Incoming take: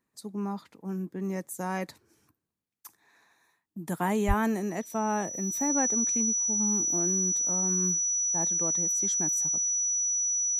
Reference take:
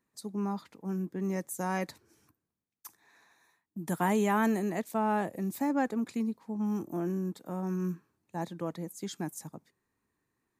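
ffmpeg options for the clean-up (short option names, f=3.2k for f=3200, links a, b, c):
-filter_complex "[0:a]bandreject=f=5.9k:w=30,asplit=3[a][b][c];[a]afade=t=out:st=4.27:d=0.02[d];[b]highpass=f=140:w=0.5412,highpass=f=140:w=1.3066,afade=t=in:st=4.27:d=0.02,afade=t=out:st=4.39:d=0.02[e];[c]afade=t=in:st=4.39:d=0.02[f];[d][e][f]amix=inputs=3:normalize=0"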